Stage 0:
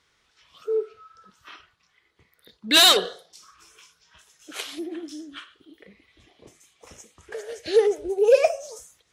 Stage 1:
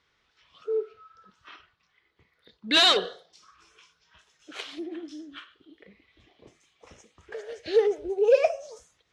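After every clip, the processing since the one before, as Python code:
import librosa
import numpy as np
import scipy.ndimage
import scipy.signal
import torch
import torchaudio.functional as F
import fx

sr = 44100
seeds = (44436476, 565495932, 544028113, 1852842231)

y = scipy.signal.sosfilt(scipy.signal.butter(2, 4600.0, 'lowpass', fs=sr, output='sos'), x)
y = F.gain(torch.from_numpy(y), -3.0).numpy()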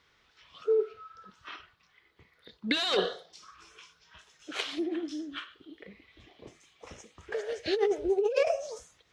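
y = fx.over_compress(x, sr, threshold_db=-26.0, ratio=-1.0)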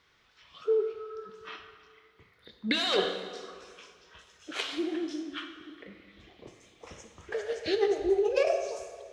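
y = fx.rev_plate(x, sr, seeds[0], rt60_s=2.0, hf_ratio=0.75, predelay_ms=0, drr_db=6.0)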